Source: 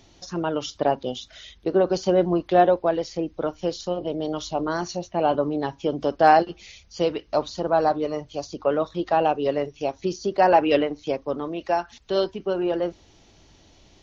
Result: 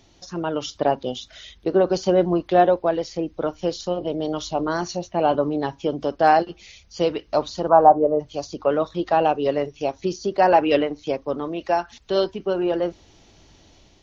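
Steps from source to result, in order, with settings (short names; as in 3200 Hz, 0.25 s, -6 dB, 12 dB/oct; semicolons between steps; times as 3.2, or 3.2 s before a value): AGC gain up to 3.5 dB; 7.68–8.19 synth low-pass 1200 Hz -> 490 Hz, resonance Q 2.7; gain -1.5 dB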